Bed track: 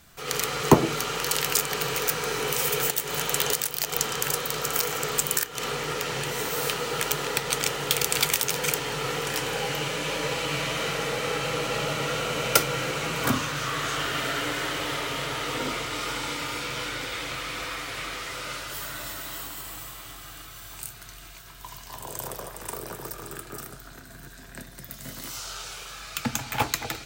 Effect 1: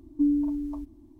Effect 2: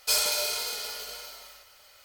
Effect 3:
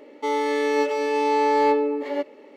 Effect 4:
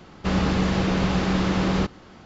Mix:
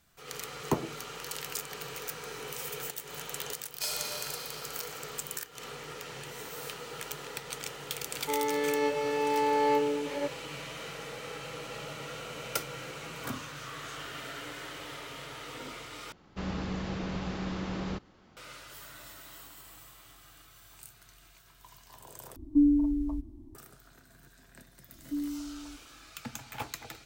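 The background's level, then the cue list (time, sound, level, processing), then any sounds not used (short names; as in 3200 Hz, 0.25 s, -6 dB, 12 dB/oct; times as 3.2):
bed track -13 dB
3.73 add 2 -10 dB
8.05 add 3 -7 dB
16.12 replace with 4 -13 dB
22.36 replace with 1 -2.5 dB + low shelf 220 Hz +9.5 dB
24.92 add 1 -11 dB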